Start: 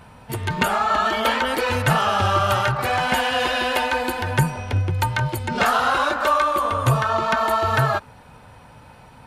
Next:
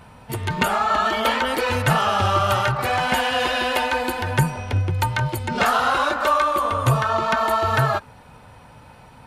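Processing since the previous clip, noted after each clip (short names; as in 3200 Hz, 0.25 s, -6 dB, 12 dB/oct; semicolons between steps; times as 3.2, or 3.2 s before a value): notch 1600 Hz, Q 30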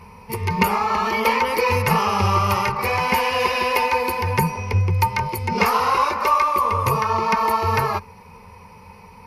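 ripple EQ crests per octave 0.84, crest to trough 15 dB; gain -1 dB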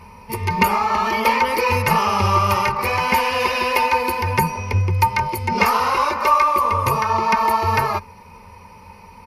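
comb 3.3 ms, depth 31%; gain +1 dB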